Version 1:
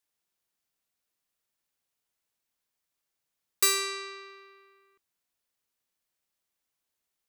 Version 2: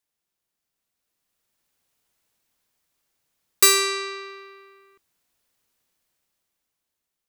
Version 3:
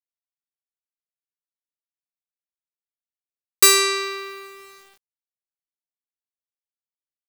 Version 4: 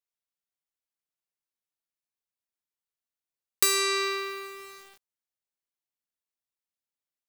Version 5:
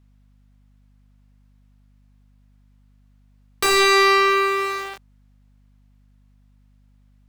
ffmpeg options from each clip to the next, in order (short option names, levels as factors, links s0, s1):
-af "lowshelf=f=450:g=3.5,dynaudnorm=f=320:g=9:m=3.55"
-filter_complex "[0:a]asplit=2[s0][s1];[s1]asoftclip=type=tanh:threshold=0.168,volume=0.562[s2];[s0][s2]amix=inputs=2:normalize=0,acrusher=bits=7:mix=0:aa=0.000001"
-af "acompressor=threshold=0.0794:ratio=4"
-filter_complex "[0:a]asplit=2[s0][s1];[s1]highpass=f=720:p=1,volume=28.2,asoftclip=type=tanh:threshold=0.473[s2];[s0][s2]amix=inputs=2:normalize=0,lowpass=f=1000:p=1,volume=0.501,aeval=exprs='val(0)+0.001*(sin(2*PI*50*n/s)+sin(2*PI*2*50*n/s)/2+sin(2*PI*3*50*n/s)/3+sin(2*PI*4*50*n/s)/4+sin(2*PI*5*50*n/s)/5)':c=same,volume=1.88"